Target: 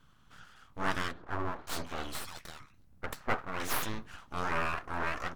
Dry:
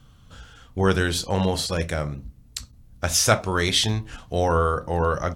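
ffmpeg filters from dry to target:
-filter_complex "[0:a]equalizer=f=400:t=o:w=0.83:g=-7.5,asettb=1/sr,asplit=3[a][b][c];[a]atrim=end=1.114[d];[b]atrim=start=1.11:end=3.83,asetpts=PTS-STARTPTS,afade=t=in:d=0.004:c=qsin,afade=t=out:st=2.716:d=0.004:c=qsin,acrossover=split=1400[e][f];[f]adelay=560[g];[e][g]amix=inputs=2:normalize=0,atrim=end_sample=119952[h];[c]atrim=start=3.826[i];[d][h]acrossfade=d=0.004:c1=hsin:c2=qsin[j];[j][i]acrossfade=d=0.004:c1=qsin:c2=hsin,flanger=delay=4.6:depth=2:regen=-59:speed=1.1:shape=sinusoidal,aeval=exprs='abs(val(0))':c=same,equalizer=f=1.3k:t=o:w=1.7:g=8.5,volume=-6.5dB"

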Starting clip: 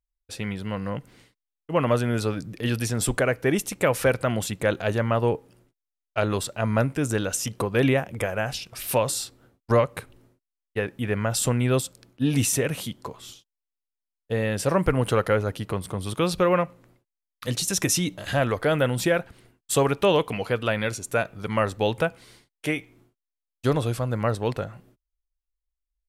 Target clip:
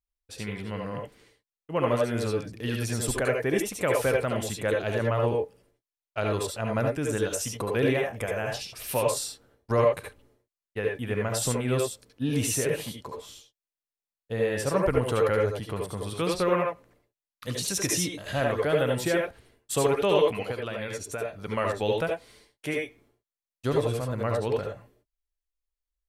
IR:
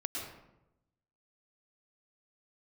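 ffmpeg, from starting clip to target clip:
-filter_complex "[0:a]asettb=1/sr,asplit=3[a][b][c];[a]atrim=end=20.514[d];[b]atrim=start=20.51:end=21.26,asetpts=PTS-STARTPTS,afade=t=in:d=0.004:c=qsin,afade=t=out:st=0.746:d=0.004:c=qsin,acompressor=threshold=-27dB:ratio=4[e];[c]atrim=start=21.256[f];[d][e]acrossfade=d=0.004:c1=hsin:c2=qsin[g];[g][f]acrossfade=d=0.004:c1=qsin:c2=hsin[h];[1:a]atrim=start_sample=2205,atrim=end_sample=6174,asetrate=66150,aresample=44100[i];[h][i]afir=irnorm=-1:irlink=0"

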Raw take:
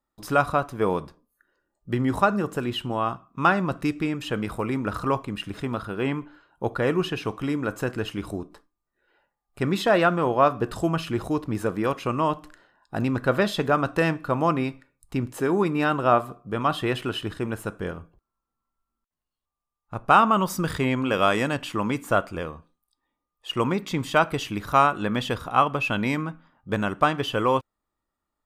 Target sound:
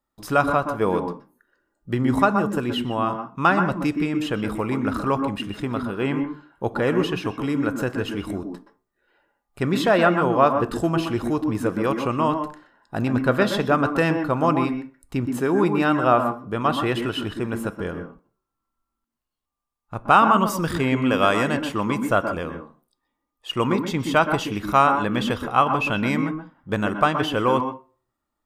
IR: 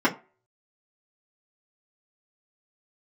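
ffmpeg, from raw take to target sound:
-filter_complex "[0:a]asplit=2[a][b];[1:a]atrim=start_sample=2205,adelay=120[c];[b][c]afir=irnorm=-1:irlink=0,volume=-23.5dB[d];[a][d]amix=inputs=2:normalize=0,volume=1.5dB"

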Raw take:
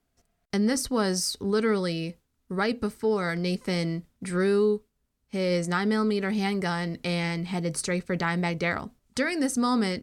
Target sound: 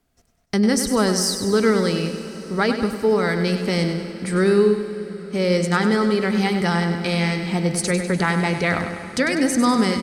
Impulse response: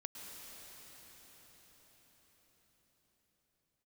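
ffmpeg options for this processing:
-filter_complex "[0:a]aecho=1:1:99|198|297|396|495|594:0.355|0.195|0.107|0.059|0.0325|0.0179,asplit=2[a][b];[1:a]atrim=start_sample=2205[c];[b][c]afir=irnorm=-1:irlink=0,volume=-6dB[d];[a][d]amix=inputs=2:normalize=0,volume=4dB"

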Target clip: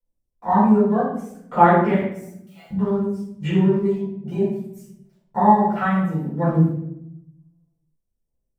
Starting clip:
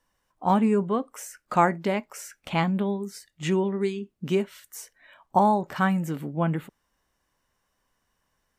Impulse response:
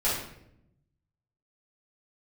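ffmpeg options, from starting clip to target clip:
-filter_complex "[0:a]acrossover=split=630|6700[a][b][c];[b]aeval=exprs='val(0)*gte(abs(val(0)),0.00562)':c=same[d];[a][d][c]amix=inputs=3:normalize=0,asettb=1/sr,asplit=3[e][f][g];[e]atrim=end=1.944[h];[f]atrim=start=1.94:end=2.71,asetpts=PTS-STARTPTS,afade=t=in:d=0.004:c=qsin,afade=t=out:st=0.766:d=0.004:c=qsin,aderivative[i];[g]atrim=start=2.706[j];[h][i]acrossfade=d=0.004:c1=hsin:c2=qsin[k];[k][j]acrossfade=d=0.004:c1=qsin:c2=hsin,asplit=2[l][m];[m]alimiter=limit=-16.5dB:level=0:latency=1,volume=-2.5dB[n];[l][n]amix=inputs=2:normalize=0,afwtdn=0.0316,aphaser=in_gain=1:out_gain=1:delay=1.6:decay=0.47:speed=0.6:type=triangular[o];[1:a]atrim=start_sample=2205[p];[o][p]afir=irnorm=-1:irlink=0,volume=-10dB"

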